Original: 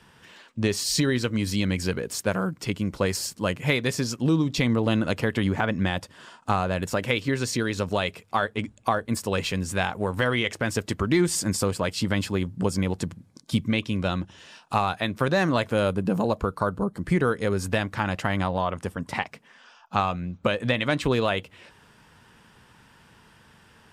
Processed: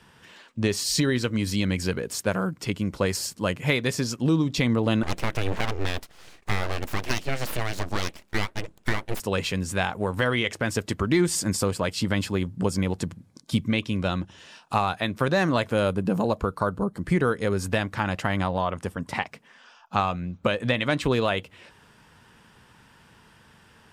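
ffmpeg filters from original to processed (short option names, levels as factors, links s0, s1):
-filter_complex "[0:a]asettb=1/sr,asplit=3[s0][s1][s2];[s0]atrim=end=5.034[s3];[s1]atrim=start=5.03:end=9.2,asetpts=PTS-STARTPTS,afade=t=in:d=0.004:c=qsin,afade=t=out:st=4.166:d=0.004:c=qsin,aeval=exprs='abs(val(0))':c=same[s4];[s2]atrim=start=9.196[s5];[s3][s4]acrossfade=d=0.004:c1=hsin:c2=qsin[s6];[s6][s5]acrossfade=d=0.004:c1=qsin:c2=hsin"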